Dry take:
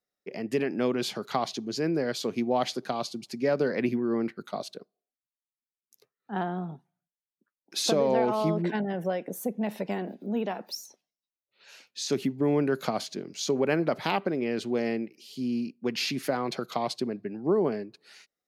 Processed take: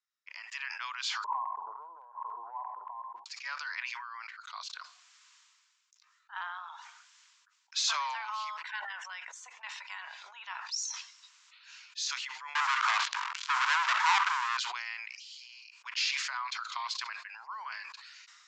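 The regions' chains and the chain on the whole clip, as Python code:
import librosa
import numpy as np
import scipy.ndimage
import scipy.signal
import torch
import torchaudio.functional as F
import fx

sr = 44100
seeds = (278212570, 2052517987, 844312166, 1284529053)

y = fx.chain(x, sr, fx.dynamic_eq(hz=450.0, q=4.2, threshold_db=-44.0, ratio=4.0, max_db=7),
    fx.brickwall_bandpass(low_hz=190.0, high_hz=1100.0),
    fx.pre_swell(db_per_s=27.0), at=(1.24, 3.26))
y = fx.chain(y, sr, fx.cheby1_lowpass(hz=1100.0, order=2),
    fx.leveller(passes=5), at=(12.55, 14.57))
y = scipy.signal.sosfilt(scipy.signal.cheby1(5, 1.0, [970.0, 7400.0], 'bandpass', fs=sr, output='sos'), y)
y = fx.sustainer(y, sr, db_per_s=30.0)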